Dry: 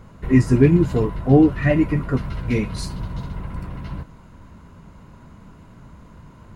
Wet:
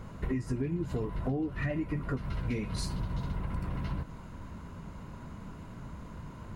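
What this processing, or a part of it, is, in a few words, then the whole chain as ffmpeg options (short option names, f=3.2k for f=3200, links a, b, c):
serial compression, leveller first: -af "acompressor=threshold=-18dB:ratio=2.5,acompressor=threshold=-30dB:ratio=6"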